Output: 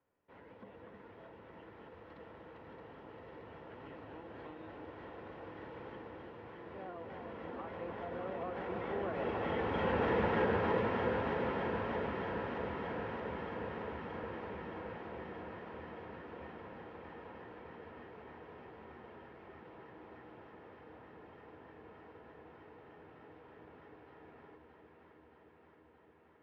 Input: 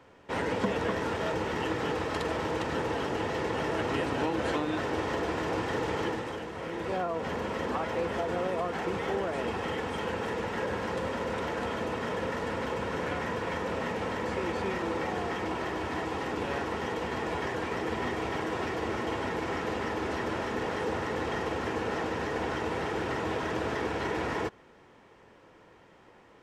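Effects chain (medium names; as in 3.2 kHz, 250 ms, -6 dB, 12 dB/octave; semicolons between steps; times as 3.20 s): Doppler pass-by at 10.16 s, 7 m/s, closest 3.3 m; Bessel low-pass 2.4 kHz, order 4; on a send: echo whose repeats swap between lows and highs 311 ms, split 880 Hz, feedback 88%, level -4 dB; on the sum: trim +1 dB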